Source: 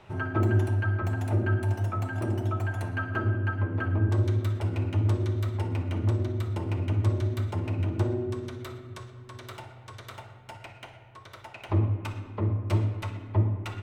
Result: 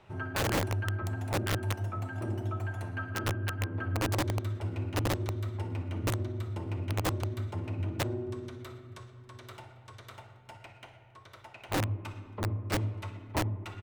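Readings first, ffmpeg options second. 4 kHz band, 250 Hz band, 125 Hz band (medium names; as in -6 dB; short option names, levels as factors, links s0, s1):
+5.5 dB, -4.5 dB, -7.0 dB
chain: -filter_complex "[0:a]asplit=2[s0][s1];[s1]adelay=274.1,volume=0.0631,highshelf=f=4000:g=-6.17[s2];[s0][s2]amix=inputs=2:normalize=0,aeval=exprs='(mod(8.41*val(0)+1,2)-1)/8.41':c=same,volume=0.531"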